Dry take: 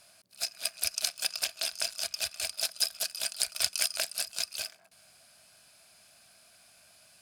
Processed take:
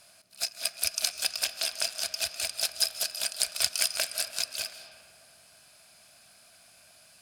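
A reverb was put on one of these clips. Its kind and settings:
comb and all-pass reverb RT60 2.5 s, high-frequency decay 0.4×, pre-delay 115 ms, DRR 9 dB
level +2 dB

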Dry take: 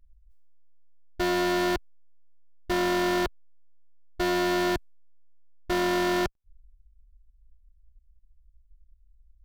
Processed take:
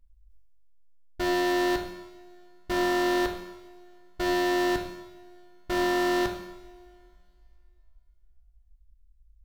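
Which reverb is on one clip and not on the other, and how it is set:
coupled-rooms reverb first 0.84 s, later 2.7 s, from −18 dB, DRR 4 dB
level −2.5 dB

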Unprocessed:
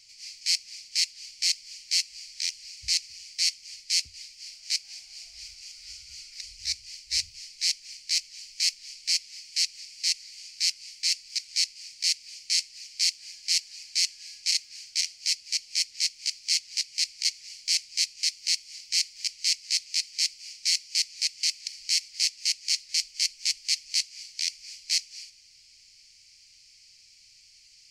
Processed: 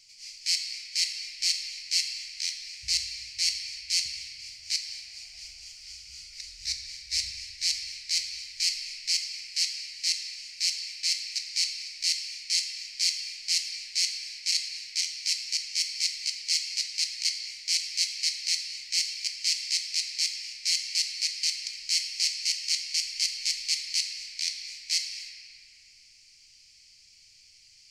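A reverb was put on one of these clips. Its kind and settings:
rectangular room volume 210 cubic metres, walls hard, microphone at 0.41 metres
level −2 dB

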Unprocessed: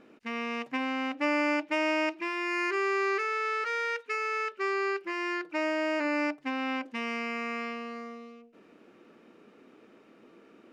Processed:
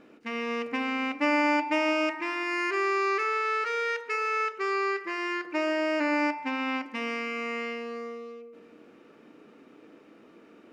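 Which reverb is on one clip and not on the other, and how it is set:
feedback delay network reverb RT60 1.6 s, low-frequency decay 1.35×, high-frequency decay 0.35×, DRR 8.5 dB
level +1.5 dB

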